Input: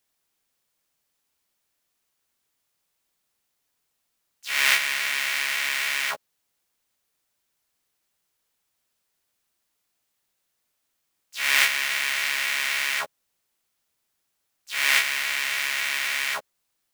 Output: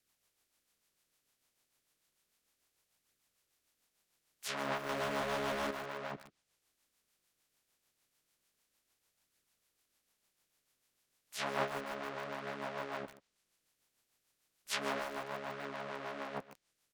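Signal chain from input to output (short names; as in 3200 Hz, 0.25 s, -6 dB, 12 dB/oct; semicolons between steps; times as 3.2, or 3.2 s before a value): spectral limiter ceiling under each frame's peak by 22 dB; treble ducked by the level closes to 860 Hz, closed at -24.5 dBFS; rotary speaker horn 6.7 Hz; flange 0.32 Hz, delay 0.4 ms, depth 8.2 ms, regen -49%; 4.89–5.71 power-law curve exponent 0.5; echo 0.135 s -16.5 dB; lo-fi delay 0.15 s, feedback 80%, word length 7-bit, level -11 dB; gain +5.5 dB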